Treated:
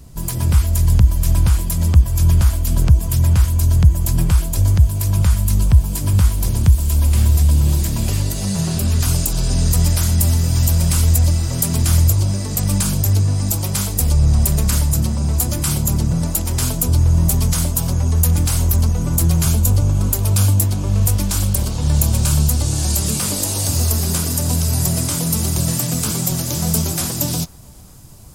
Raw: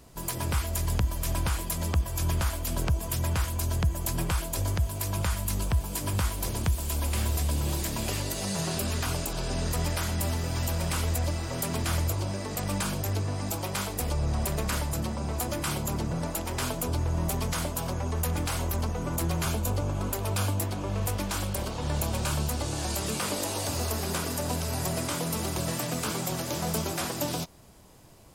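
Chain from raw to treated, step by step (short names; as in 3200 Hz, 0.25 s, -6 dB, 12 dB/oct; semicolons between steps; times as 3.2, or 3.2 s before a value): tone controls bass +14 dB, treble +6 dB, from 8.99 s treble +13 dB; narrowing echo 0.45 s, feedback 74%, band-pass 1100 Hz, level -24 dB; gain +1.5 dB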